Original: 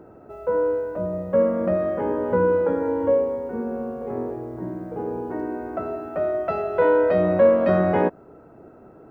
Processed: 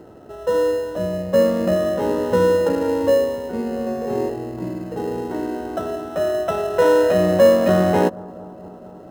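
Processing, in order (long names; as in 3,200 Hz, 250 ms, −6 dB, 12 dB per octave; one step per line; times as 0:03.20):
in parallel at −11 dB: decimation without filtering 19×
0:03.84–0:04.29: on the sum: double-tracking delay 27 ms −2 dB
bucket-brigade delay 229 ms, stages 2,048, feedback 78%, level −22 dB
level +1.5 dB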